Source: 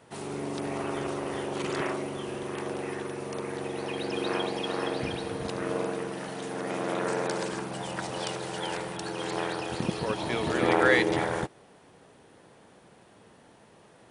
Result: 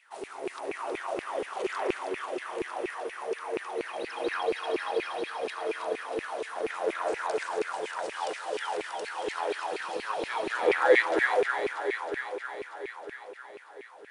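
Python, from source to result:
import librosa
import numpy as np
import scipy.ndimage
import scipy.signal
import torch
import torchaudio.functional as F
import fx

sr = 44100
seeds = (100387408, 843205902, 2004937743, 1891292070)

y = fx.echo_alternate(x, sr, ms=159, hz=800.0, feedback_pct=85, wet_db=-4.0)
y = fx.filter_lfo_highpass(y, sr, shape='saw_down', hz=4.2, low_hz=360.0, high_hz=2500.0, q=5.8)
y = y * 10.0 ** (-7.5 / 20.0)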